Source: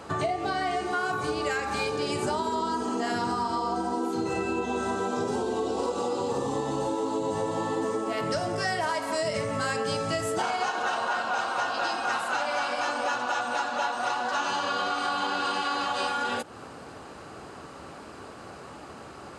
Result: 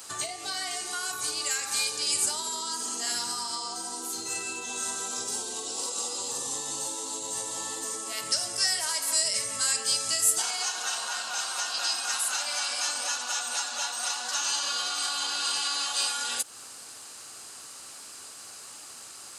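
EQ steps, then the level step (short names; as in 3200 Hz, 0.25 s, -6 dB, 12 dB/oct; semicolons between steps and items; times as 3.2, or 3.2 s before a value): tone controls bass +13 dB, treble +9 dB; differentiator; bell 170 Hz -6 dB 0.43 oct; +7.5 dB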